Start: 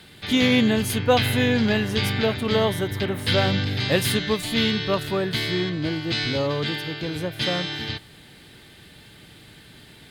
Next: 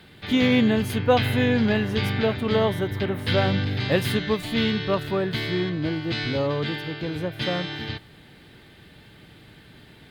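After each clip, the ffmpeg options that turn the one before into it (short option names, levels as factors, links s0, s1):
-af "equalizer=f=8800:w=0.44:g=-10.5"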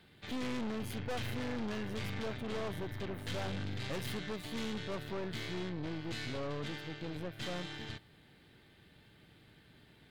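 -af "aeval=exprs='(tanh(25.1*val(0)+0.75)-tanh(0.75))/25.1':c=same,volume=0.398"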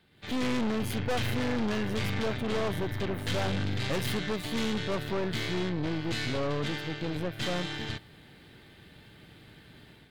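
-af "dynaudnorm=f=100:g=5:m=3.98,volume=0.668"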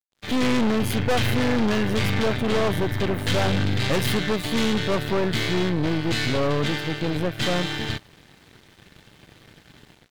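-af "aeval=exprs='sgn(val(0))*max(abs(val(0))-0.00188,0)':c=same,volume=2.66"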